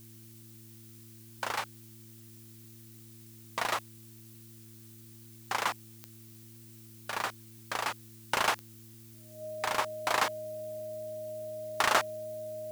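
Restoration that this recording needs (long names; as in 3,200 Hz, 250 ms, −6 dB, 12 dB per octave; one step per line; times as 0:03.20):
click removal
hum removal 112.4 Hz, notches 3
notch filter 620 Hz, Q 30
noise reduction from a noise print 28 dB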